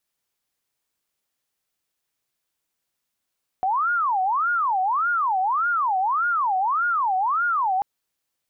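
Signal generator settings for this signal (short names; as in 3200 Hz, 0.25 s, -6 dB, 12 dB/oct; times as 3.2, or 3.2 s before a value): siren wail 743–1430 Hz 1.7/s sine -19 dBFS 4.19 s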